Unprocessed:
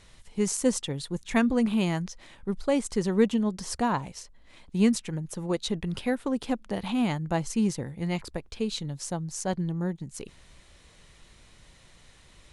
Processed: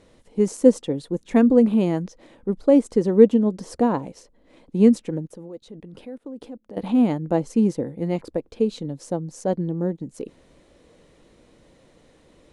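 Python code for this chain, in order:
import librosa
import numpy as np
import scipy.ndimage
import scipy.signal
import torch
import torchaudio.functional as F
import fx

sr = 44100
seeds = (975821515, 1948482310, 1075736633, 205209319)

y = fx.level_steps(x, sr, step_db=22, at=(5.27, 6.77))
y = fx.small_body(y, sr, hz=(300.0, 470.0), ring_ms=20, db=18)
y = y * 10.0 ** (-7.0 / 20.0)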